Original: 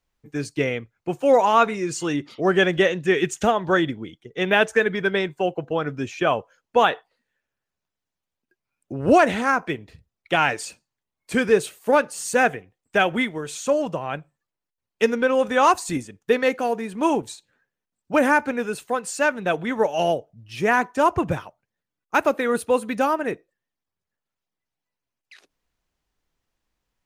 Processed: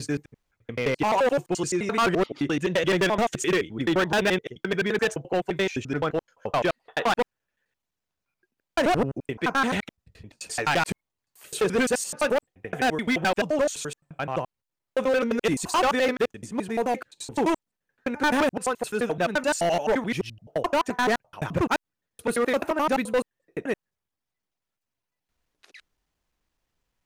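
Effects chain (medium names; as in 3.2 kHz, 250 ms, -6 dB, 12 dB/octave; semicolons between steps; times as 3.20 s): slices played last to first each 86 ms, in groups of 6; overload inside the chain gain 18.5 dB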